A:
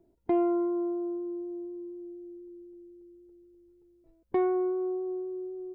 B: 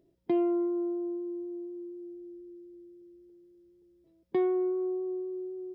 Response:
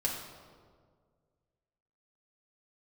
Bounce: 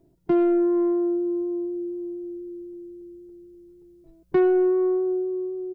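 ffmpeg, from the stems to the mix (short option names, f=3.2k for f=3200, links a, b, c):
-filter_complex "[0:a]asoftclip=type=tanh:threshold=-26.5dB,dynaudnorm=f=200:g=7:m=3.5dB,volume=2.5dB[a];[1:a]equalizer=f=150:t=o:w=2.3:g=12,adelay=0.9,volume=-4dB[b];[a][b]amix=inputs=2:normalize=0,bass=f=250:g=3,treble=f=4k:g=4"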